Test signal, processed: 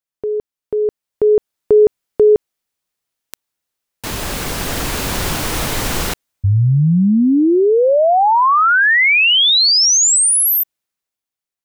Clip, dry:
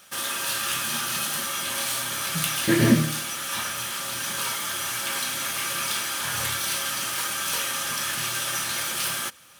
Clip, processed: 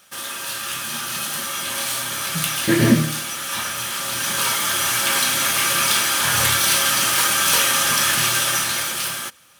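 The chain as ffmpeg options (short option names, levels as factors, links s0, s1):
-af "dynaudnorm=f=190:g=13:m=5.01,volume=0.891"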